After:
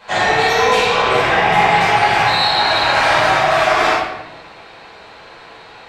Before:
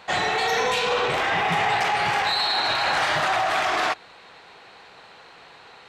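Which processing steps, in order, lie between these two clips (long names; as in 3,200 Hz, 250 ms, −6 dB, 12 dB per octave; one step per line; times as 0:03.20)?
rectangular room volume 380 cubic metres, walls mixed, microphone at 5.1 metres
level −4 dB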